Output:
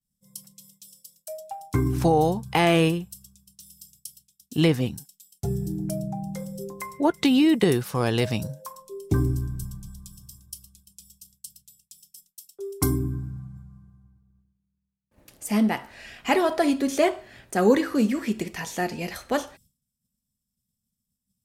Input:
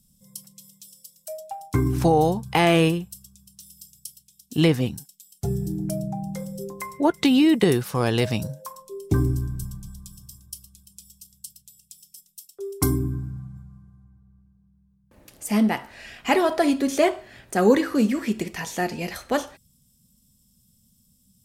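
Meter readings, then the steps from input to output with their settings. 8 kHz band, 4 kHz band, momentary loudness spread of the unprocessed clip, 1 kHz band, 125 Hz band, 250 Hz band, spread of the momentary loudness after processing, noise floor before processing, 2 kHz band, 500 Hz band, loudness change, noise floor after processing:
-1.5 dB, -1.5 dB, 22 LU, -1.5 dB, -1.5 dB, -1.5 dB, 22 LU, -63 dBFS, -1.5 dB, -1.5 dB, -1.5 dB, -82 dBFS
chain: expander -49 dBFS; gain -1.5 dB

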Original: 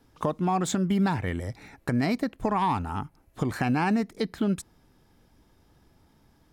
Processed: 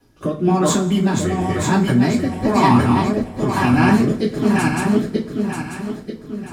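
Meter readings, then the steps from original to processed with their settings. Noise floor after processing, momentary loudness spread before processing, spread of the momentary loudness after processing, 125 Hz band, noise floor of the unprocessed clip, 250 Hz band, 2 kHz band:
-38 dBFS, 10 LU, 13 LU, +11.0 dB, -63 dBFS, +11.5 dB, +11.0 dB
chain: regenerating reverse delay 0.469 s, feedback 62%, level -1 dB; two-slope reverb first 0.23 s, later 1.5 s, from -20 dB, DRR -7 dB; rotary speaker horn 1 Hz; gain +1.5 dB

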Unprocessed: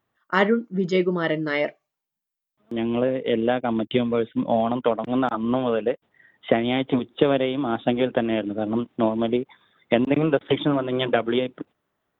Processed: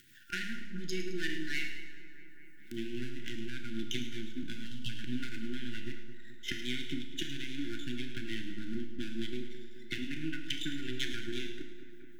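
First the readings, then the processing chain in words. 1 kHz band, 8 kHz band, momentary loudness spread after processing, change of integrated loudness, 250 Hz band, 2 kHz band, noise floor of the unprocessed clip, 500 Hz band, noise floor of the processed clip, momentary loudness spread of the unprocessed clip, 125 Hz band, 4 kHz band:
-28.5 dB, n/a, 11 LU, -16.5 dB, -16.0 dB, -10.0 dB, -85 dBFS, -24.5 dB, -44 dBFS, 6 LU, -13.5 dB, -6.0 dB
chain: half-wave gain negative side -12 dB; high shelf 3100 Hz +9.5 dB; spectral delete 4.66–4.89, 250–2600 Hz; compressor, threshold -25 dBFS, peak gain reduction 11.5 dB; rotary speaker horn 5.5 Hz; low shelf 420 Hz -7.5 dB; flange 1 Hz, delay 6.9 ms, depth 4.6 ms, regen +77%; on a send: split-band echo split 2000 Hz, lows 0.215 s, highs 0.107 s, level -12 dB; on the sum: upward compressor, threshold -45 dBFS; FFT band-reject 380–1400 Hz; Schroeder reverb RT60 0.8 s, combs from 25 ms, DRR 6.5 dB; gain +3 dB

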